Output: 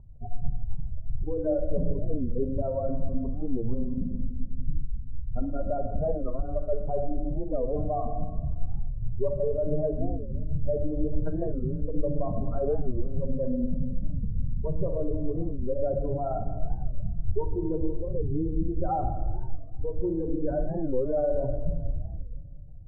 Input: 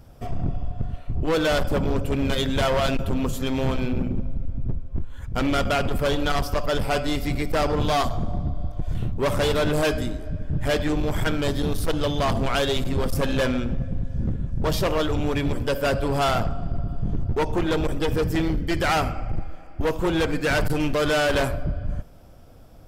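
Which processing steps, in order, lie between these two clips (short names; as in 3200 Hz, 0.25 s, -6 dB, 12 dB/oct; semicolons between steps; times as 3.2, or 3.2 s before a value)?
spectral contrast raised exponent 2.5; steep low-pass 1000 Hz 36 dB/oct; limiter -22 dBFS, peak gain reduction 30 dB; thinning echo 0.174 s, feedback 55%, high-pass 420 Hz, level -17.5 dB; shoebox room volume 1800 m³, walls mixed, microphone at 1.2 m; record warp 45 rpm, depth 250 cents; gain -2 dB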